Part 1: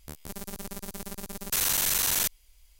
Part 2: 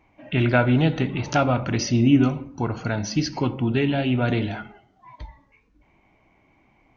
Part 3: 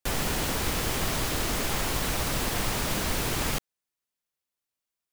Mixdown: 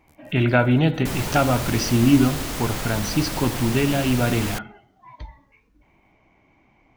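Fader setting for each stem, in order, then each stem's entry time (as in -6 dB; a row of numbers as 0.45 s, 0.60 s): -18.5 dB, +1.0 dB, -1.0 dB; 0.00 s, 0.00 s, 1.00 s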